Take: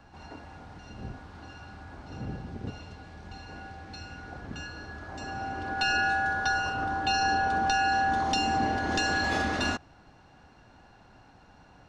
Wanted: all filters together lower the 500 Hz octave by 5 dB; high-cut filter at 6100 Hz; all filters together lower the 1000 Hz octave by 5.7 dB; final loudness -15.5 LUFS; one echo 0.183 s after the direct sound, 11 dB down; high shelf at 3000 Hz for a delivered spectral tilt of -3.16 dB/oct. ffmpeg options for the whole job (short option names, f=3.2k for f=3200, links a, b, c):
-af "lowpass=6.1k,equalizer=f=500:t=o:g=-5,equalizer=f=1k:t=o:g=-6.5,highshelf=f=3k:g=3.5,aecho=1:1:183:0.282,volume=15dB"